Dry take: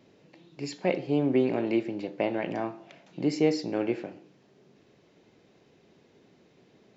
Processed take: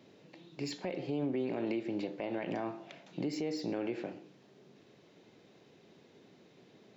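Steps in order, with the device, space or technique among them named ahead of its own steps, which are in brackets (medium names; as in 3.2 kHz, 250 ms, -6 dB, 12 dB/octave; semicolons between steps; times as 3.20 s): broadcast voice chain (high-pass 97 Hz; de-esser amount 100%; compression 5:1, threshold -28 dBFS, peak gain reduction 10 dB; peaking EQ 3.7 kHz +3 dB 0.38 oct; peak limiter -26.5 dBFS, peak gain reduction 9 dB)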